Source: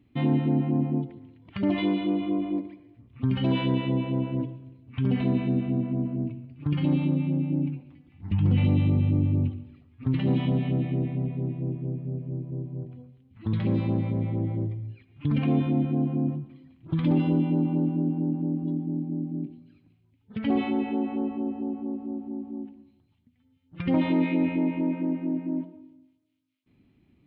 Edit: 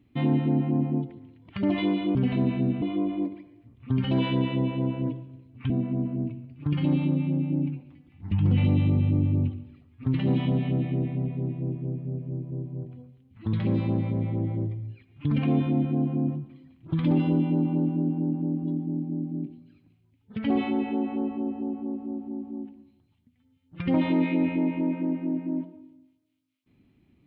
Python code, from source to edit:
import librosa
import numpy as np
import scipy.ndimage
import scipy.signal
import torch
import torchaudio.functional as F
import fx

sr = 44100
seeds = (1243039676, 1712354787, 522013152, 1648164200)

y = fx.edit(x, sr, fx.move(start_s=5.03, length_s=0.67, to_s=2.15), tone=tone)